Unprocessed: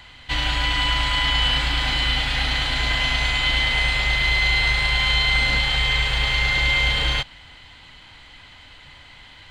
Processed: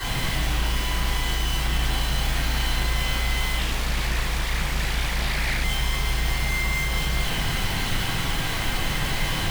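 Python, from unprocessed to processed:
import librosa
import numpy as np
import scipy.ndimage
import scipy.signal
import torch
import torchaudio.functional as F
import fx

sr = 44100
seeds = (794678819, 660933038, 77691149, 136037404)

y = fx.over_compress(x, sr, threshold_db=-32.0, ratio=-1.0)
y = fx.schmitt(y, sr, flips_db=-43.0)
y = fx.peak_eq(y, sr, hz=150.0, db=12.5, octaves=0.2)
y = fx.room_shoebox(y, sr, seeds[0], volume_m3=88.0, walls='mixed', distance_m=3.7)
y = fx.doppler_dist(y, sr, depth_ms=0.9, at=(3.59, 5.64))
y = y * 10.0 ** (-8.0 / 20.0)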